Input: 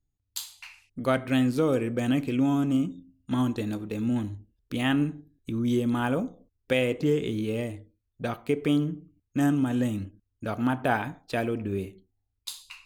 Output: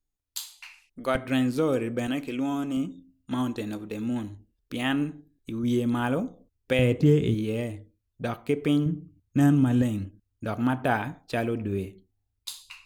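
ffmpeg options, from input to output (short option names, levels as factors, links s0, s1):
-af "asetnsamples=n=441:p=0,asendcmd='1.15 equalizer g -2.5;2.07 equalizer g -12.5;2.77 equalizer g -5.5;5.63 equalizer g 0.5;6.79 equalizer g 12;7.34 equalizer g 1.5;8.86 equalizer g 8.5;9.82 equalizer g 2',equalizer=f=100:t=o:w=2.2:g=-14"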